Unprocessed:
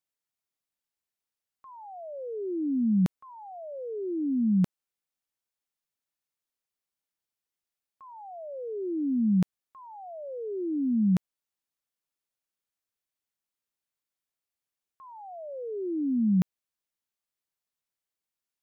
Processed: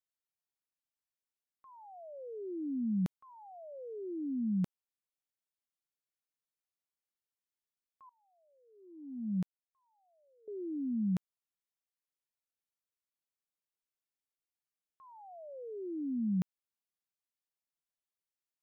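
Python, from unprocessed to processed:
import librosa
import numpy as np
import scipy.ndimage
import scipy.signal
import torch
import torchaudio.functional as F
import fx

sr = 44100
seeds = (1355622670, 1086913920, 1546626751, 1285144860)

y = fx.upward_expand(x, sr, threshold_db=-36.0, expansion=2.5, at=(8.09, 10.48))
y = F.gain(torch.from_numpy(y), -8.5).numpy()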